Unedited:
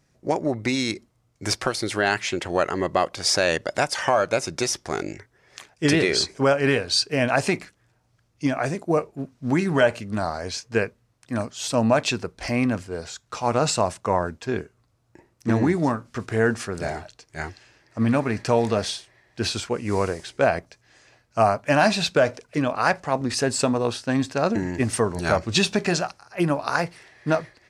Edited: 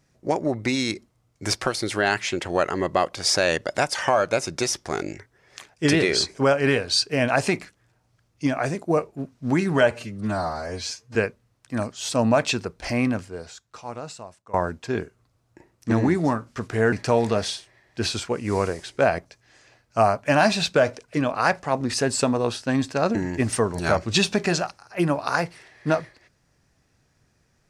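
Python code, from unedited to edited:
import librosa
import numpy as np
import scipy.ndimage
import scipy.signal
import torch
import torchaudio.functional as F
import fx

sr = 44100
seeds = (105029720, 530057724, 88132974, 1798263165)

y = fx.edit(x, sr, fx.stretch_span(start_s=9.91, length_s=0.83, factor=1.5),
    fx.fade_out_to(start_s=12.61, length_s=1.51, curve='qua', floor_db=-21.0),
    fx.cut(start_s=16.51, length_s=1.82), tone=tone)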